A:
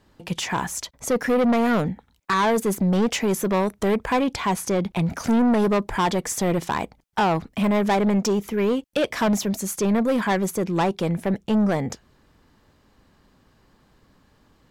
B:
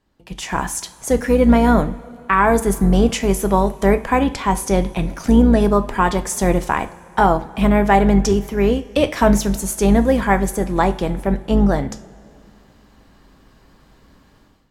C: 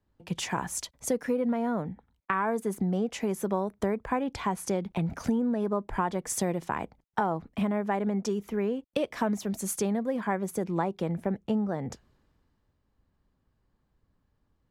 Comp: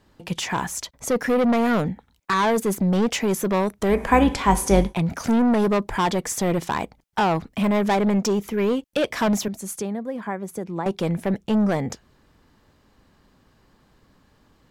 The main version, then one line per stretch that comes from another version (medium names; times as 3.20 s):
A
3.96–4.87 s: from B, crossfade 0.16 s
9.48–10.86 s: from C